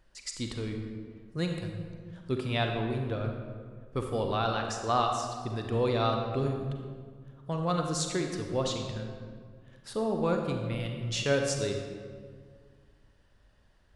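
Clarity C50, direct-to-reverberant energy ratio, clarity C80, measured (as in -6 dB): 3.5 dB, 3.0 dB, 5.0 dB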